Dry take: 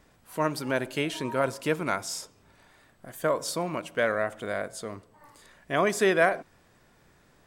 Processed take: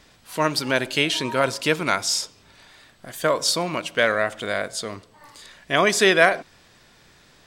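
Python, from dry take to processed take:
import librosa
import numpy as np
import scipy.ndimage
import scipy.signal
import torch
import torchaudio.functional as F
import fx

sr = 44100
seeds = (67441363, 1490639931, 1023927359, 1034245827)

y = fx.peak_eq(x, sr, hz=4100.0, db=11.0, octaves=1.9)
y = y * 10.0 ** (4.0 / 20.0)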